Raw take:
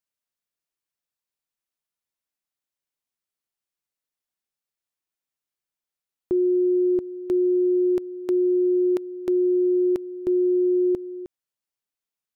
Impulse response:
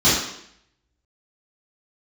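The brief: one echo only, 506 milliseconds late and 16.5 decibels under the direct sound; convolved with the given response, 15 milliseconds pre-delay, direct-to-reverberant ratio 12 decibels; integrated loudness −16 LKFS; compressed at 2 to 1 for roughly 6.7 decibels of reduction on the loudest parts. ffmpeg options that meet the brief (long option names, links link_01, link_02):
-filter_complex "[0:a]acompressor=threshold=-31dB:ratio=2,aecho=1:1:506:0.15,asplit=2[link_01][link_02];[1:a]atrim=start_sample=2205,adelay=15[link_03];[link_02][link_03]afir=irnorm=-1:irlink=0,volume=-33dB[link_04];[link_01][link_04]amix=inputs=2:normalize=0,volume=14dB"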